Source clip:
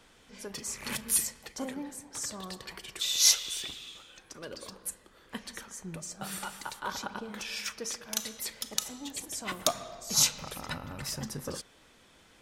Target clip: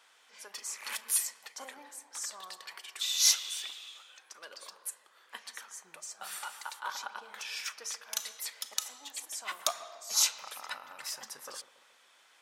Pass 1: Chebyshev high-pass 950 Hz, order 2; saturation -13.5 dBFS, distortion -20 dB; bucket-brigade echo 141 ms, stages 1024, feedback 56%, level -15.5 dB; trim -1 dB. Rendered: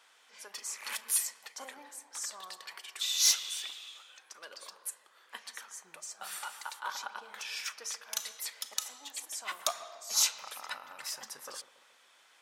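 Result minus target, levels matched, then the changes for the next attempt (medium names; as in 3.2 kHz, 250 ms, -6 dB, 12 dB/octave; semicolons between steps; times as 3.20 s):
saturation: distortion +9 dB
change: saturation -7.5 dBFS, distortion -29 dB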